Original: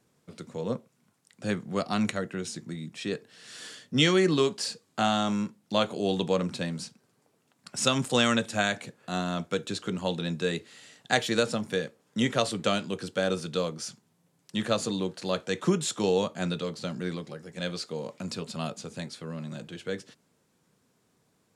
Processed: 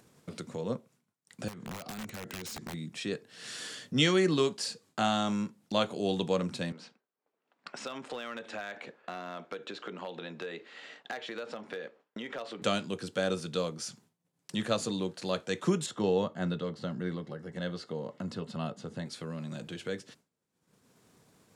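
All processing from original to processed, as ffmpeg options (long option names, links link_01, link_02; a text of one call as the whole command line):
ffmpeg -i in.wav -filter_complex "[0:a]asettb=1/sr,asplit=3[link_01][link_02][link_03];[link_01]atrim=end=1.484[link_04];[link_02]atrim=start=1.48:end=2.74,asetpts=PTS-STARTPTS,afade=type=in:duration=0.004:curve=qsin,afade=type=out:start_time=1.256:duration=0.004:curve=qsin,lowpass=9100,acompressor=threshold=-37dB:ratio=20:attack=3.2:release=140:knee=1:detection=peak,aeval=exprs='(mod(59.6*val(0)+1,2)-1)/59.6':channel_layout=same[link_05];[link_03]atrim=start=2.736[link_06];[link_04][link_05]acrossfade=duration=0.004:curve1=hsin:curve2=qsin[link_07];[link_07][link_06]acrossfade=duration=0.004:curve1=qsin:curve2=hsin,asettb=1/sr,asplit=3[link_08][link_09][link_10];[link_08]atrim=end=6.724[link_11];[link_09]atrim=start=6.72:end=12.62,asetpts=PTS-STARTPTS,afade=type=in:duration=0.004:curve=qsin,afade=type=out:start_time=5.896:duration=0.004:curve=qsin,acompressor=threshold=-31dB:ratio=4:attack=3.2:release=140:knee=1:detection=peak,highpass=380,lowpass=2700,asoftclip=type=hard:threshold=-29dB[link_12];[link_10]atrim=start=12.616[link_13];[link_11][link_12]acrossfade=duration=0.004:curve1=hsin:curve2=qsin[link_14];[link_14][link_13]acrossfade=duration=0.004:curve1=qsin:curve2=hsin,asettb=1/sr,asplit=3[link_15][link_16][link_17];[link_15]atrim=end=15.864[link_18];[link_16]atrim=start=15.86:end=19.06,asetpts=PTS-STARTPTS,afade=type=in:duration=0.004:curve=qsin,afade=type=out:start_time=3.196:duration=0.004:curve=qsin,asuperstop=centerf=2400:order=8:qfactor=7.6,bass=frequency=250:gain=2,treble=frequency=4000:gain=-13[link_19];[link_17]atrim=start=19.056[link_20];[link_18][link_19]acrossfade=duration=0.004:curve1=hsin:curve2=qsin[link_21];[link_21][link_20]acrossfade=duration=0.004:curve1=qsin:curve2=hsin,agate=range=-33dB:threshold=-52dB:ratio=3:detection=peak,acompressor=mode=upward:threshold=-31dB:ratio=2.5,volume=-3dB" out.wav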